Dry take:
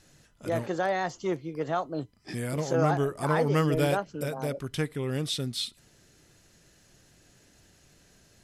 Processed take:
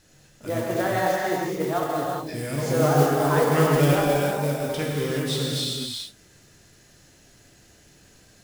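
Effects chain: gated-style reverb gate 450 ms flat, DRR -4.5 dB; modulation noise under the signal 18 dB

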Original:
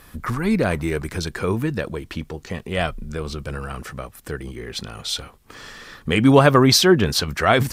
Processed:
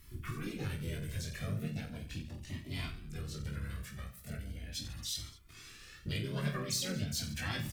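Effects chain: amplifier tone stack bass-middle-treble 6-0-2; compression 2.5:1, threshold -40 dBFS, peak gain reduction 9 dB; reverse bouncing-ball echo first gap 20 ms, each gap 1.4×, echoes 5; harmony voices +4 st -7 dB, +7 st -4 dB; Shepard-style flanger rising 0.38 Hz; trim +5.5 dB

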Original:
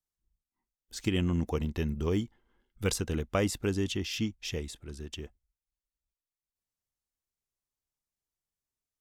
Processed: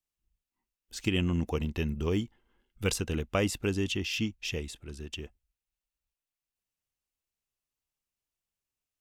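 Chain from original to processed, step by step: peaking EQ 2.7 kHz +6.5 dB 0.35 oct

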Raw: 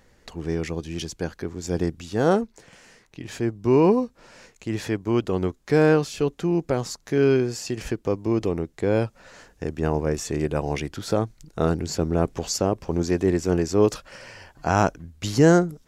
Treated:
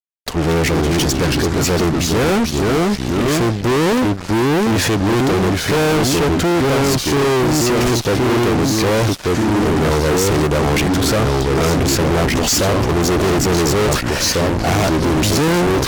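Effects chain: ever faster or slower copies 201 ms, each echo -2 st, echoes 3, each echo -6 dB; fuzz box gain 38 dB, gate -46 dBFS; MP3 128 kbps 48 kHz

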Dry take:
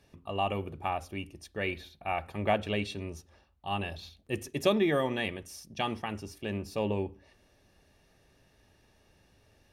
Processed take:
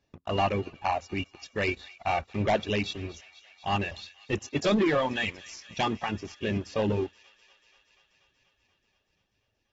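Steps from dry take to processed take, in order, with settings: reverb removal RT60 1.6 s; waveshaping leveller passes 3; on a send: feedback echo behind a high-pass 241 ms, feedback 76%, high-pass 2.2 kHz, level -17 dB; on the sum: trim -5 dB; AAC 24 kbps 44.1 kHz

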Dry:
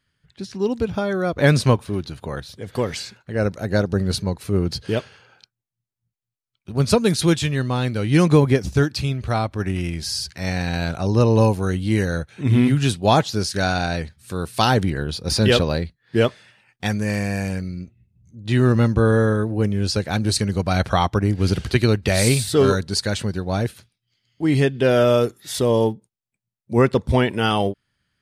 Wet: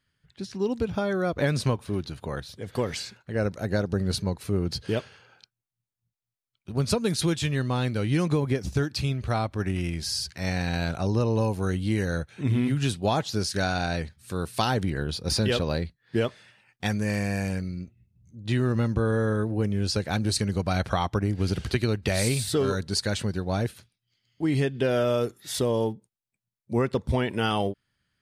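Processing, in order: compression 6:1, threshold -17 dBFS, peak gain reduction 8.5 dB; trim -3.5 dB

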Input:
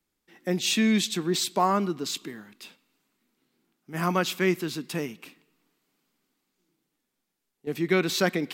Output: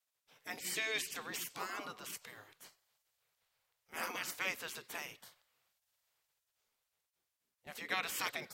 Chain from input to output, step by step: spectral gate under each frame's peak -15 dB weak; trim -3 dB

